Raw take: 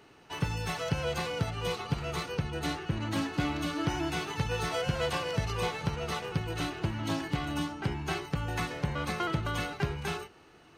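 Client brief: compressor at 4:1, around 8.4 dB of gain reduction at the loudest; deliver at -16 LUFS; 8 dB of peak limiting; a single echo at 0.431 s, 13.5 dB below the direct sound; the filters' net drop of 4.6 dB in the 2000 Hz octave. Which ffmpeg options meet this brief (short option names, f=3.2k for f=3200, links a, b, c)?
-af "equalizer=f=2k:t=o:g=-6.5,acompressor=threshold=-35dB:ratio=4,alimiter=level_in=7.5dB:limit=-24dB:level=0:latency=1,volume=-7.5dB,aecho=1:1:431:0.211,volume=25dB"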